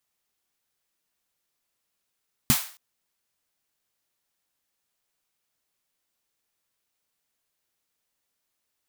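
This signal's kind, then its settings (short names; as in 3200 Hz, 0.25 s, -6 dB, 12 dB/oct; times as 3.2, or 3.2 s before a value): snare drum length 0.27 s, tones 140 Hz, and 230 Hz, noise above 720 Hz, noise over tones -3 dB, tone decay 0.08 s, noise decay 0.42 s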